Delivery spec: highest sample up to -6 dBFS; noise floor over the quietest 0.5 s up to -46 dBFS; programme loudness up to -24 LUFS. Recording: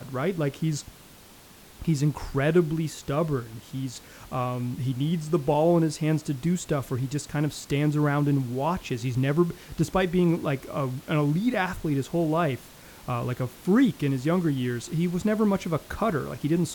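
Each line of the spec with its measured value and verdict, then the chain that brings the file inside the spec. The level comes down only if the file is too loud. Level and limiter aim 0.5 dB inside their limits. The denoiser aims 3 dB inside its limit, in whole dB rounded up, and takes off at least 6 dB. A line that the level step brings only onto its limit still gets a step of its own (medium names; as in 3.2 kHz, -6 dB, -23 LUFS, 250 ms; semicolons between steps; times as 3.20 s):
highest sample -10.5 dBFS: pass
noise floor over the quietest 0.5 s -50 dBFS: pass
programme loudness -26.5 LUFS: pass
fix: none needed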